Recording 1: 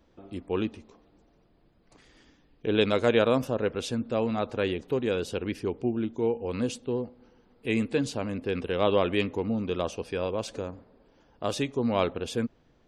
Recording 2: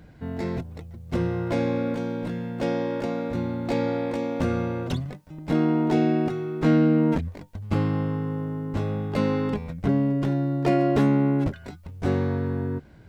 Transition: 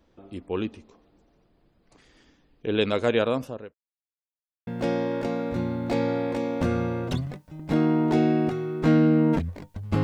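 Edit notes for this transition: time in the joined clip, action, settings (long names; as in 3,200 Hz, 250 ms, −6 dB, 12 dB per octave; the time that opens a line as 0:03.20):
recording 1
0:03.05–0:03.74: fade out equal-power
0:03.74–0:04.67: silence
0:04.67: continue with recording 2 from 0:02.46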